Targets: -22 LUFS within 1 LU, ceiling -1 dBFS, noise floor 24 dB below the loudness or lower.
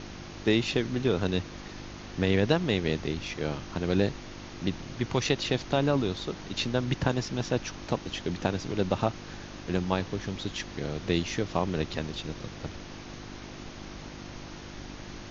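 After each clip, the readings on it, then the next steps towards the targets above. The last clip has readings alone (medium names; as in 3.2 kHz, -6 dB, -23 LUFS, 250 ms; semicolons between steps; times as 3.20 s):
hum 50 Hz; highest harmonic 350 Hz; hum level -46 dBFS; noise floor -43 dBFS; noise floor target -54 dBFS; loudness -30.0 LUFS; peak level -9.0 dBFS; loudness target -22.0 LUFS
-> de-hum 50 Hz, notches 7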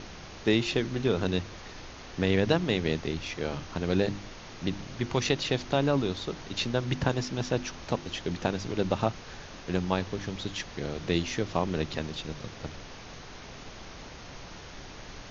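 hum not found; noise floor -45 dBFS; noise floor target -54 dBFS
-> noise print and reduce 9 dB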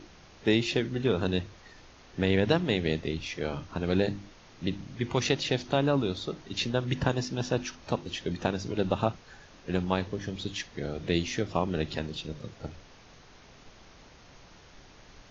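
noise floor -54 dBFS; loudness -30.0 LUFS; peak level -9.5 dBFS; loudness target -22.0 LUFS
-> trim +8 dB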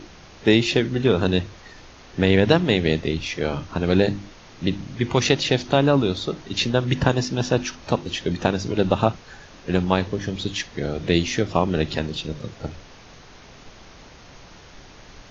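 loudness -22.0 LUFS; peak level -1.5 dBFS; noise floor -46 dBFS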